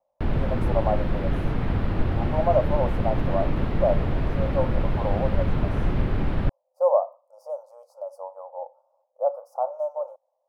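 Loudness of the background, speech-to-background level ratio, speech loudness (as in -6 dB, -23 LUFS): -27.0 LUFS, -1.5 dB, -28.5 LUFS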